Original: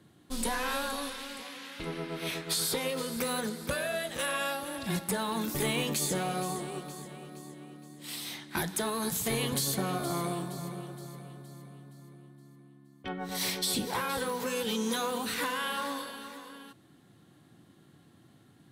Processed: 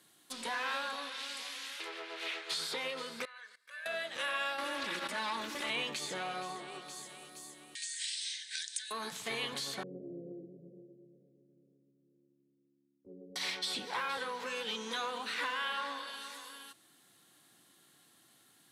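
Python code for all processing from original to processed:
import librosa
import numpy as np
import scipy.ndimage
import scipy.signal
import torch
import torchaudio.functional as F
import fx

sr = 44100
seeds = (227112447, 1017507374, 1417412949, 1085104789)

y = fx.chain(x, sr, fx.brickwall_highpass(low_hz=310.0),
    fx.peak_eq(hz=4800.0, db=-4.0, octaves=0.34),
    fx.doppler_dist(depth_ms=0.15), at=(1.76, 2.52))
y = fx.chain(y, sr, fx.level_steps(step_db=20),
    fx.bandpass_q(hz=1800.0, q=2.8),
    fx.comb(ms=1.8, depth=0.49), at=(3.25, 3.86))
y = fx.chain(y, sr, fx.lower_of_two(delay_ms=3.5),
    fx.peak_eq(hz=740.0, db=-10.5, octaves=0.21),
    fx.env_flatten(amount_pct=100), at=(4.58, 5.7))
y = fx.chain(y, sr, fx.brickwall_bandpass(low_hz=1500.0, high_hz=9500.0),
    fx.dynamic_eq(hz=2000.0, q=1.1, threshold_db=-52.0, ratio=4.0, max_db=-8),
    fx.band_squash(depth_pct=100), at=(7.75, 8.91))
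y = fx.chain(y, sr, fx.steep_lowpass(hz=530.0, slope=72),
    fx.echo_single(ms=83, db=-10.0),
    fx.band_widen(depth_pct=40), at=(9.83, 13.36))
y = fx.env_lowpass_down(y, sr, base_hz=2800.0, full_db=-32.5)
y = fx.highpass(y, sr, hz=1200.0, slope=6)
y = fx.high_shelf(y, sr, hz=5000.0, db=11.0)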